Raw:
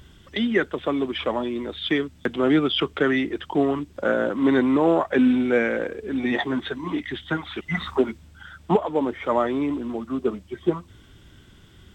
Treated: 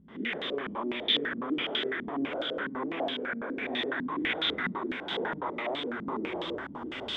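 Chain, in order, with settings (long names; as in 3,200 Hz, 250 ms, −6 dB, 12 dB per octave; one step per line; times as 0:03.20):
spectrum smeared in time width 329 ms
camcorder AGC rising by 7.5 dB per second
brickwall limiter −22.5 dBFS, peak gain reduction 9.5 dB
spectral tilt +4 dB per octave
on a send: feedback delay with all-pass diffusion 544 ms, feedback 44%, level −15 dB
on the sum: time stretch by phase vocoder 0.6×
feedback echo with a long and a short gap by turns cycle 1,493 ms, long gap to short 1.5 to 1, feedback 31%, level −7 dB
low-pass on a step sequencer 12 Hz 210–3,600 Hz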